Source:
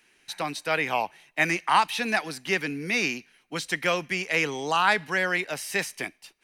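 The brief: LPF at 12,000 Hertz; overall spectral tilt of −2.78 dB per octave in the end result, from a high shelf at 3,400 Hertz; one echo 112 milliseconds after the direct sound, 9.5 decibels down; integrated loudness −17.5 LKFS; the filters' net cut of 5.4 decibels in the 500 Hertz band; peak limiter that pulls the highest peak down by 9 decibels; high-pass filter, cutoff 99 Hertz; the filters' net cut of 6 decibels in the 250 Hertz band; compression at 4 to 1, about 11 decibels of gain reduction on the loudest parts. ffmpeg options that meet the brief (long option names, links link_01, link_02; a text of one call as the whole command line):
ffmpeg -i in.wav -af "highpass=99,lowpass=12000,equalizer=frequency=250:width_type=o:gain=-6.5,equalizer=frequency=500:width_type=o:gain=-5,highshelf=frequency=3400:gain=-6,acompressor=threshold=-31dB:ratio=4,alimiter=level_in=3dB:limit=-24dB:level=0:latency=1,volume=-3dB,aecho=1:1:112:0.335,volume=20dB" out.wav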